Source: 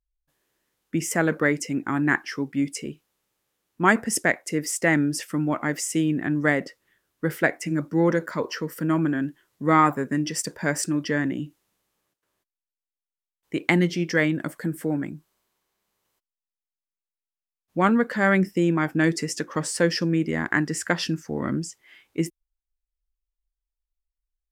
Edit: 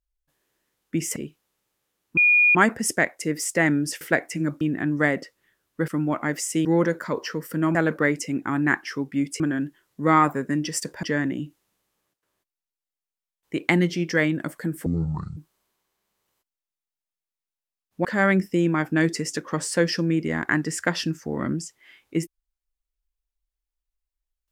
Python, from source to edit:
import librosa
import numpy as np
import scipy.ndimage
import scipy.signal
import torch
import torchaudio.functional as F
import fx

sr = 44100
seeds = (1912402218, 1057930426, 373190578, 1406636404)

y = fx.edit(x, sr, fx.move(start_s=1.16, length_s=1.65, to_s=9.02),
    fx.insert_tone(at_s=3.82, length_s=0.38, hz=2440.0, db=-13.5),
    fx.swap(start_s=5.28, length_s=0.77, other_s=7.32, other_length_s=0.6),
    fx.cut(start_s=10.65, length_s=0.38),
    fx.speed_span(start_s=14.86, length_s=0.28, speed=0.55),
    fx.cut(start_s=17.82, length_s=0.26), tone=tone)